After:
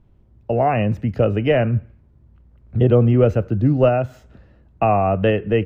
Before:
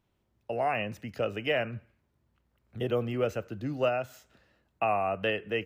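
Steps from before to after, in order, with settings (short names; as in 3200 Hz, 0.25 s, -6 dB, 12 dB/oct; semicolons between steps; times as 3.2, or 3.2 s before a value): tilt -4 dB/oct; gain +8.5 dB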